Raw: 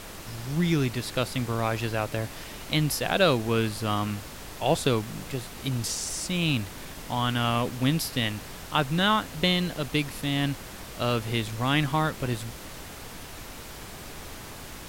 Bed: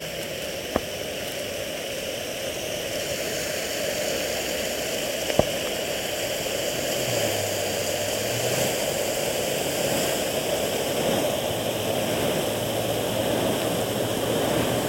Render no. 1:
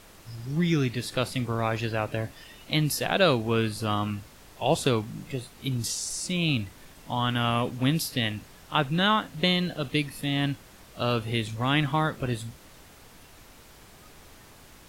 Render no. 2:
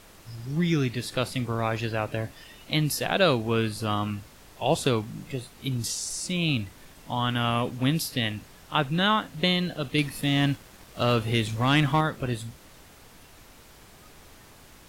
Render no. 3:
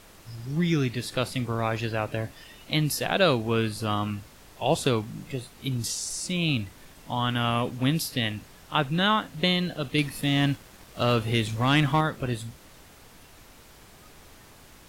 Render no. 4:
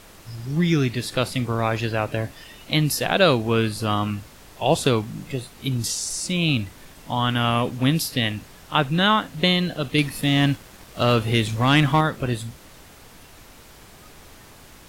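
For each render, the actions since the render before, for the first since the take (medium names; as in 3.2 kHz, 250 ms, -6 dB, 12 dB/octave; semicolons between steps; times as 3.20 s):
noise print and reduce 10 dB
9.98–12.01 s: waveshaping leveller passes 1
no audible change
trim +4.5 dB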